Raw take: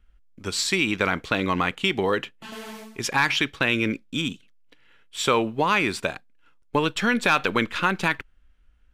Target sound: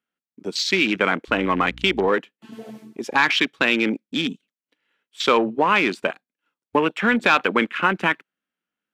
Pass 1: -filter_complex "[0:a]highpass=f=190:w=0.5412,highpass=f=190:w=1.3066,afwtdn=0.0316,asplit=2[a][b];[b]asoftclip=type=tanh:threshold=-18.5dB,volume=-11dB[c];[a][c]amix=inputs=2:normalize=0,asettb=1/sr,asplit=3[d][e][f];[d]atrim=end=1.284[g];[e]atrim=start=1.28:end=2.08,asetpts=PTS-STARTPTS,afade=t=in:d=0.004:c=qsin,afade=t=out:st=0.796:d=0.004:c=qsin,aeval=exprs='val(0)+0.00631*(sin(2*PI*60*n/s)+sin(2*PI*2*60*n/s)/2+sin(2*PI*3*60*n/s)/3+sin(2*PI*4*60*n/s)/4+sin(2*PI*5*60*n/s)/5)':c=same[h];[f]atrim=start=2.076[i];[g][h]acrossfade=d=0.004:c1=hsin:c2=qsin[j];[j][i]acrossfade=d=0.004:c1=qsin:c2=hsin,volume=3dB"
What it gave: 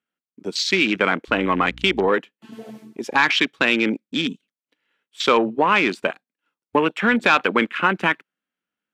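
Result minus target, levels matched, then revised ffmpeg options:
soft clip: distortion -6 dB
-filter_complex "[0:a]highpass=f=190:w=0.5412,highpass=f=190:w=1.3066,afwtdn=0.0316,asplit=2[a][b];[b]asoftclip=type=tanh:threshold=-29dB,volume=-11dB[c];[a][c]amix=inputs=2:normalize=0,asettb=1/sr,asplit=3[d][e][f];[d]atrim=end=1.284[g];[e]atrim=start=1.28:end=2.08,asetpts=PTS-STARTPTS,afade=t=in:d=0.004:c=qsin,afade=t=out:st=0.796:d=0.004:c=qsin,aeval=exprs='val(0)+0.00631*(sin(2*PI*60*n/s)+sin(2*PI*2*60*n/s)/2+sin(2*PI*3*60*n/s)/3+sin(2*PI*4*60*n/s)/4+sin(2*PI*5*60*n/s)/5)':c=same[h];[f]atrim=start=2.076[i];[g][h]acrossfade=d=0.004:c1=hsin:c2=qsin[j];[j][i]acrossfade=d=0.004:c1=qsin:c2=hsin,volume=3dB"

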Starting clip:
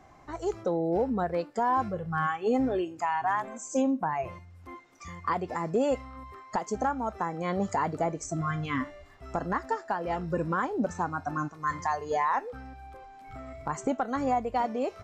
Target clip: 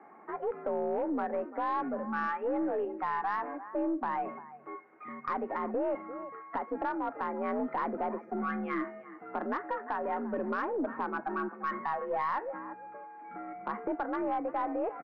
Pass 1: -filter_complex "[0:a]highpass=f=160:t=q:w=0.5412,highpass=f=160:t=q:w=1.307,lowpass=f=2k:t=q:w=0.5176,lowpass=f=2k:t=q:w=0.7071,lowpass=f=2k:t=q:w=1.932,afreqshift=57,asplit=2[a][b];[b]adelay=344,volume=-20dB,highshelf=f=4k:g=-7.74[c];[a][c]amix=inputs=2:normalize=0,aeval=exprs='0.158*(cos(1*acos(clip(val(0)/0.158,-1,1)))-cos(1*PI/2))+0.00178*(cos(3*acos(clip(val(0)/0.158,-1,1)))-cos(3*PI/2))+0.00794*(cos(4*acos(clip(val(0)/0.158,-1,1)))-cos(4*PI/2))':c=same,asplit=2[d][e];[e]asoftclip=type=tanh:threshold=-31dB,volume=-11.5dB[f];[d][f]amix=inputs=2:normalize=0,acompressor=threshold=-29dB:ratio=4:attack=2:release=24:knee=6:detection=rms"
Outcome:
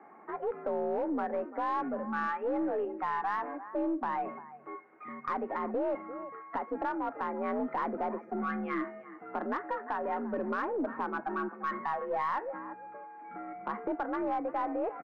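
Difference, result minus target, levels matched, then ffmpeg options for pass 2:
soft clip: distortion +9 dB
-filter_complex "[0:a]highpass=f=160:t=q:w=0.5412,highpass=f=160:t=q:w=1.307,lowpass=f=2k:t=q:w=0.5176,lowpass=f=2k:t=q:w=0.7071,lowpass=f=2k:t=q:w=1.932,afreqshift=57,asplit=2[a][b];[b]adelay=344,volume=-20dB,highshelf=f=4k:g=-7.74[c];[a][c]amix=inputs=2:normalize=0,aeval=exprs='0.158*(cos(1*acos(clip(val(0)/0.158,-1,1)))-cos(1*PI/2))+0.00178*(cos(3*acos(clip(val(0)/0.158,-1,1)))-cos(3*PI/2))+0.00794*(cos(4*acos(clip(val(0)/0.158,-1,1)))-cos(4*PI/2))':c=same,asplit=2[d][e];[e]asoftclip=type=tanh:threshold=-21.5dB,volume=-11.5dB[f];[d][f]amix=inputs=2:normalize=0,acompressor=threshold=-29dB:ratio=4:attack=2:release=24:knee=6:detection=rms"

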